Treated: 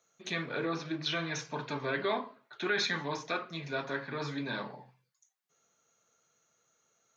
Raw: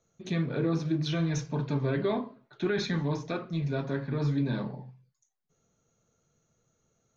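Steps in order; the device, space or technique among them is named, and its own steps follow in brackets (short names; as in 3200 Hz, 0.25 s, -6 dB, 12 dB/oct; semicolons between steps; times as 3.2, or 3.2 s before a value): filter by subtraction (in parallel: LPF 1500 Hz 12 dB/oct + phase invert); 0.65–1.4 on the sum: LPF 5200 Hz 12 dB/oct; gain +3.5 dB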